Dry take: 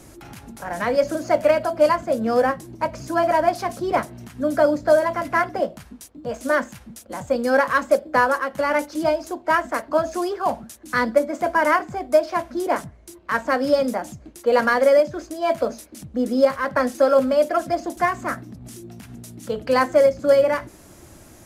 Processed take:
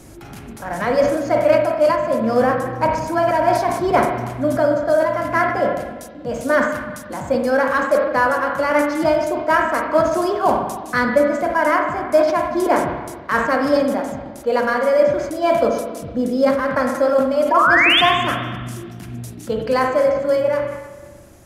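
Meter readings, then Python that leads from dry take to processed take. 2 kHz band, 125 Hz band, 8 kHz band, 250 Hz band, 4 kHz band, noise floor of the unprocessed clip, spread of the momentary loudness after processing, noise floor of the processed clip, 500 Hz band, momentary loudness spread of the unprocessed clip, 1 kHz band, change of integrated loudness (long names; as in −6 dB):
+5.0 dB, +7.5 dB, +2.0 dB, +4.0 dB, +11.0 dB, −47 dBFS, 12 LU, −37 dBFS, +2.5 dB, 15 LU, +4.0 dB, +3.0 dB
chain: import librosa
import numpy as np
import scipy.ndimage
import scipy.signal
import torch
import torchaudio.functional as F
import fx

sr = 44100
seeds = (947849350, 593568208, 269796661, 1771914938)

y = fx.low_shelf(x, sr, hz=330.0, db=3.0)
y = fx.rider(y, sr, range_db=4, speed_s=0.5)
y = fx.spec_paint(y, sr, seeds[0], shape='rise', start_s=17.51, length_s=0.5, low_hz=910.0, high_hz=3700.0, level_db=-15.0)
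y = fx.rev_spring(y, sr, rt60_s=1.4, pass_ms=(41, 58), chirp_ms=35, drr_db=3.0)
y = fx.sustainer(y, sr, db_per_s=61.0)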